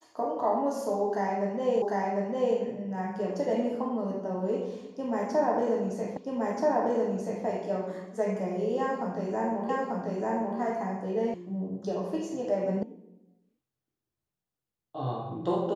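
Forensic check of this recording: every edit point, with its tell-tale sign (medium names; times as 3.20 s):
1.82 s: repeat of the last 0.75 s
6.17 s: repeat of the last 1.28 s
9.69 s: repeat of the last 0.89 s
11.34 s: sound stops dead
12.83 s: sound stops dead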